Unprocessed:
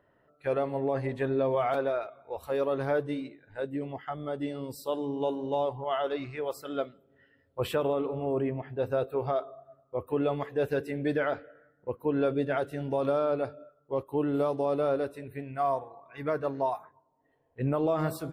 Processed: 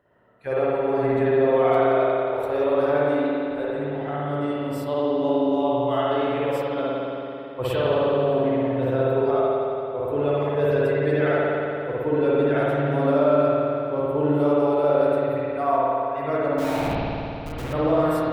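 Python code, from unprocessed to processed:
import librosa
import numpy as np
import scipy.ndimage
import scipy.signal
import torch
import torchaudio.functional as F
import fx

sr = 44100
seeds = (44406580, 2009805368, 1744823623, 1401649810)

y = x + 10.0 ** (-23.0 / 20.0) * np.pad(x, (int(1176 * sr / 1000.0), 0))[:len(x)]
y = fx.schmitt(y, sr, flips_db=-45.5, at=(16.58, 17.73))
y = fx.rev_spring(y, sr, rt60_s=3.0, pass_ms=(55,), chirp_ms=35, drr_db=-8.0)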